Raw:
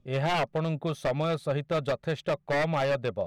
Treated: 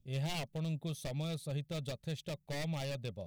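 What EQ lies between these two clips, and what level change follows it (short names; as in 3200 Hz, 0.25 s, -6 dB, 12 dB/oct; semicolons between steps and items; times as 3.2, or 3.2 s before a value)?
tone controls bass +12 dB, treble -3 dB; pre-emphasis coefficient 0.9; bell 1400 Hz -12 dB 1.3 oct; +4.0 dB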